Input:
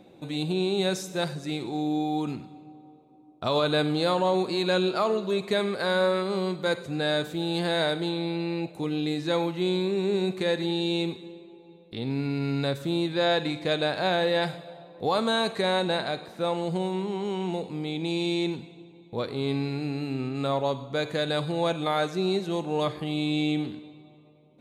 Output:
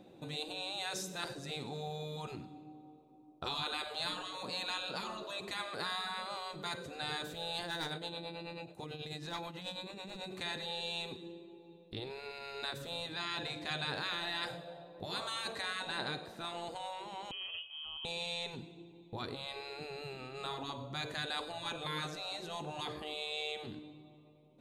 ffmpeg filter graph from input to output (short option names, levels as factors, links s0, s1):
-filter_complex "[0:a]asettb=1/sr,asplit=3[s0][s1][s2];[s0]atrim=end=7.624[s3];[s1]atrim=start=7.62:end=10.35,asetpts=PTS-STARTPTS,afade=t=in:d=0.004:c=qsin,afade=t=out:st=2.726:d=0.004:c=qsin,volume=8.91,asoftclip=hard,volume=0.112,tremolo=f=9.2:d=0.72[s4];[s2]atrim=start=10.346[s5];[s3][s4]acrossfade=d=0.004:c1=hsin:c2=qsin[s6];[s6][s5]acrossfade=d=0.004:c1=qsin:c2=hsin,asettb=1/sr,asplit=3[s7][s8][s9];[s7]atrim=end=17.314[s10];[s8]atrim=start=17.31:end=18.05,asetpts=PTS-STARTPTS,afade=t=in:d=0.004:c=qsin,afade=t=out:st=0.736:d=0.004:c=qsin,agate=range=0.355:threshold=0.0355:ratio=16:release=100:detection=peak,aeval=exprs='val(0)+0.00251*sin(2*PI*840*n/s)':c=same,lowpass=f=2900:t=q:w=0.5098,lowpass=f=2900:t=q:w=0.6013,lowpass=f=2900:t=q:w=0.9,lowpass=f=2900:t=q:w=2.563,afreqshift=-3400[s11];[s9]atrim=start=18.046[s12];[s10][s11]acrossfade=d=0.004:c1=hsin:c2=qsin[s13];[s13][s12]acrossfade=d=0.004:c1=qsin:c2=hsin,bandreject=f=2200:w=14,afftfilt=real='re*lt(hypot(re,im),0.141)':imag='im*lt(hypot(re,im),0.141)':win_size=1024:overlap=0.75,asubboost=boost=2:cutoff=93,volume=0.596"